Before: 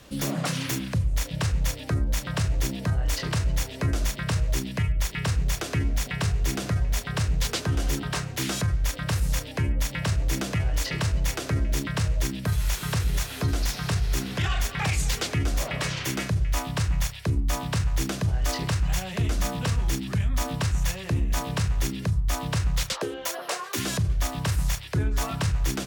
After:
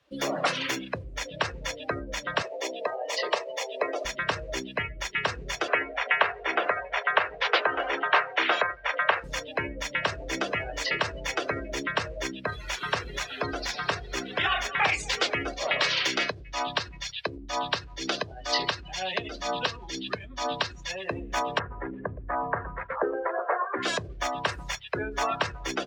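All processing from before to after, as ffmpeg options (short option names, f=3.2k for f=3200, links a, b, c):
-filter_complex "[0:a]asettb=1/sr,asplit=3[a][b][c];[a]atrim=end=2.424[d];[b]atrim=start=2.42:end=4.05,asetpts=PTS-STARTPTS,afade=t=in:d=0.004:c=qsin,afade=t=out:st=1.626:d=0.004:c=qsin,highpass=f=490:t=q:w=1.7,equalizer=f=1.5k:t=o:w=0.25:g=-9[e];[c]atrim=start=4.046[f];[d][e]acrossfade=d=0.004:c1=hsin:c2=qsin[g];[g][f]acrossfade=d=0.004:c1=qsin:c2=hsin,asettb=1/sr,asplit=3[h][i][j];[h]atrim=end=5.684[k];[i]atrim=start=5.68:end=9.24,asetpts=PTS-STARTPTS,afade=t=in:d=0.004:c=qsin,afade=t=out:st=3.556:d=0.004:c=qsin,lowpass=f=7.7k:w=0.5412,lowpass=f=7.7k:w=1.3066,acontrast=49,acrossover=split=410 3000:gain=0.1 1 0.178[l][m][n];[l][m][n]amix=inputs=3:normalize=0[o];[j]atrim=start=9.236[p];[k][o]acrossfade=d=0.004:c1=hsin:c2=qsin[q];[q][p]acrossfade=d=0.004:c1=qsin:c2=hsin,asettb=1/sr,asplit=3[r][s][t];[r]atrim=end=15.534[u];[s]atrim=start=15.53:end=20.91,asetpts=PTS-STARTPTS,afade=t=in:d=0.004:c=qsin,afade=t=out:st=5.376:d=0.004:c=qsin,acompressor=threshold=-24dB:ratio=10:attack=3.2:release=140:knee=1:detection=peak,equalizer=f=4.3k:t=o:w=1.1:g=6.5[v];[t]atrim=start=20.906[w];[u][v]acrossfade=d=0.004:c1=hsin:c2=qsin[x];[x][w]acrossfade=d=0.004:c1=qsin:c2=hsin,asettb=1/sr,asplit=3[y][z][aa];[y]atrim=end=21.594[ab];[z]atrim=start=21.59:end=23.83,asetpts=PTS-STARTPTS,afade=t=in:d=0.004:c=qsin,afade=t=out:st=2.236:d=0.004:c=qsin,lowpass=f=1.9k:w=0.5412,lowpass=f=1.9k:w=1.3066,aecho=1:1:118|236|354|472|590|708:0.251|0.136|0.0732|0.0396|0.0214|0.0115,atrim=end_sample=98784[ac];[aa]atrim=start=23.826[ad];[ab][ac]acrossfade=d=0.004:c1=hsin:c2=qsin[ae];[ae][ad]acrossfade=d=0.004:c1=qsin:c2=hsin,afftdn=nr=23:nf=-36,acrossover=split=370 4900:gain=0.0631 1 0.178[af][ag][ah];[af][ag][ah]amix=inputs=3:normalize=0,volume=7dB"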